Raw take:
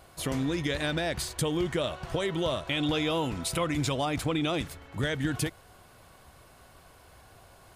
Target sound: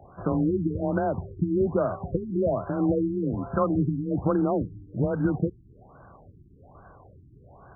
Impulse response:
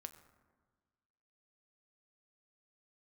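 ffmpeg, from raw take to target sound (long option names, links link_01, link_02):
-af "afreqshift=24,afftfilt=real='re*lt(b*sr/1024,370*pow(1700/370,0.5+0.5*sin(2*PI*1.2*pts/sr)))':imag='im*lt(b*sr/1024,370*pow(1700/370,0.5+0.5*sin(2*PI*1.2*pts/sr)))':win_size=1024:overlap=0.75,volume=5.5dB"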